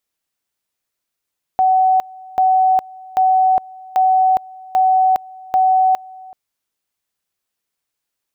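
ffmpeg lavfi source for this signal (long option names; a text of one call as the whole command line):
ffmpeg -f lavfi -i "aevalsrc='pow(10,(-10-23.5*gte(mod(t,0.79),0.41))/20)*sin(2*PI*752*t)':duration=4.74:sample_rate=44100" out.wav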